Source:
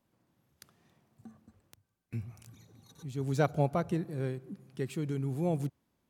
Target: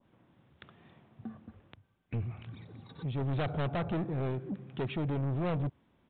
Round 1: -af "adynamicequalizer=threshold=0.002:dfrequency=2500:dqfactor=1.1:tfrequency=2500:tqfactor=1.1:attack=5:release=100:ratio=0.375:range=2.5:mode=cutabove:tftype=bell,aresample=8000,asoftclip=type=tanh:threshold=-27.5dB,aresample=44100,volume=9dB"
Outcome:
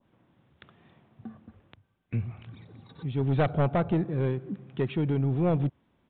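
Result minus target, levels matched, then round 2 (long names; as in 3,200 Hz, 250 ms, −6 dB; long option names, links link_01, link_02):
soft clipping: distortion −6 dB
-af "adynamicequalizer=threshold=0.002:dfrequency=2500:dqfactor=1.1:tfrequency=2500:tqfactor=1.1:attack=5:release=100:ratio=0.375:range=2.5:mode=cutabove:tftype=bell,aresample=8000,asoftclip=type=tanh:threshold=-38.5dB,aresample=44100,volume=9dB"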